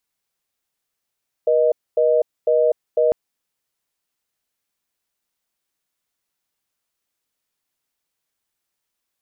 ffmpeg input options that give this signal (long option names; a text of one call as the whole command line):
ffmpeg -f lavfi -i "aevalsrc='0.158*(sin(2*PI*480*t)+sin(2*PI*620*t))*clip(min(mod(t,0.5),0.25-mod(t,0.5))/0.005,0,1)':duration=1.65:sample_rate=44100" out.wav